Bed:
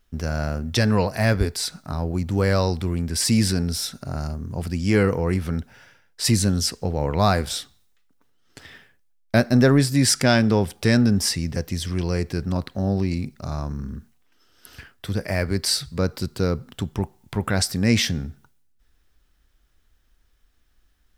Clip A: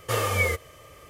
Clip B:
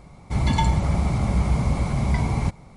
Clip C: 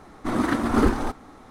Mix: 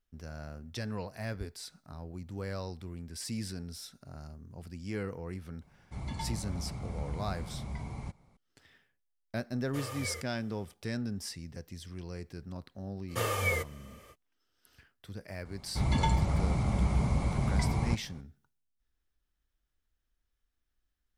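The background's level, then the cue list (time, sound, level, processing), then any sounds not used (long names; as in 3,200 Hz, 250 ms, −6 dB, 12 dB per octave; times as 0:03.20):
bed −18 dB
0:05.61: mix in B −17.5 dB
0:09.65: mix in A −16 dB
0:13.07: mix in A −6 dB, fades 0.05 s
0:15.45: mix in B −7 dB
not used: C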